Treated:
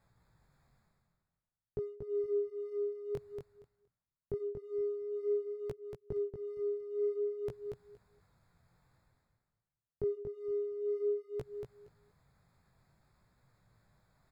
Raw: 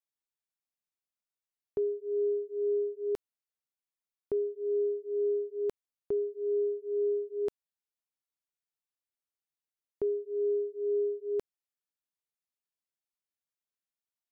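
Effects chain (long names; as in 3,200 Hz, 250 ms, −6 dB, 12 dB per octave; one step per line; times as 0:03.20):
adaptive Wiener filter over 15 samples
low shelf with overshoot 200 Hz +12 dB, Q 1.5
reversed playback
upward compression, threshold −42 dBFS
reversed playback
chorus effect 0.52 Hz, delay 16 ms, depth 7.8 ms
repeating echo 234 ms, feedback 17%, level −6 dB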